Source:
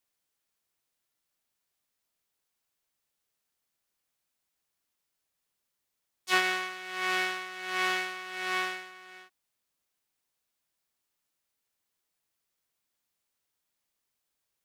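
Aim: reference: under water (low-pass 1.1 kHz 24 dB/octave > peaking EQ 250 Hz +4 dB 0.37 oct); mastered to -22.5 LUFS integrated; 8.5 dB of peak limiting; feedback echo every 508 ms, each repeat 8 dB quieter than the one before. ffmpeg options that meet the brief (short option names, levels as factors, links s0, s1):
-af "alimiter=limit=0.133:level=0:latency=1,lowpass=f=1100:w=0.5412,lowpass=f=1100:w=1.3066,equalizer=f=250:t=o:w=0.37:g=4,aecho=1:1:508|1016|1524|2032|2540:0.398|0.159|0.0637|0.0255|0.0102,volume=6.68"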